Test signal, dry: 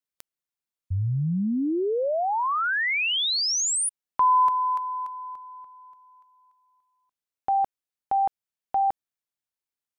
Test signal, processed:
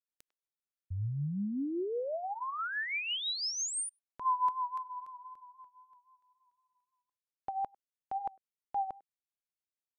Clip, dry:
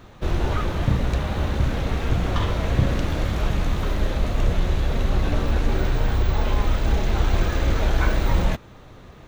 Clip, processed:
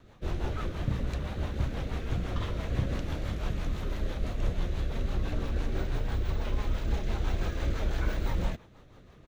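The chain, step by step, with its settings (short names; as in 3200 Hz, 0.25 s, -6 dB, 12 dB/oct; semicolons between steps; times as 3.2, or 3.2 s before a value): speakerphone echo 0.1 s, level -23 dB; rotary speaker horn 6 Hz; vibrato 3.8 Hz 34 cents; gain -8 dB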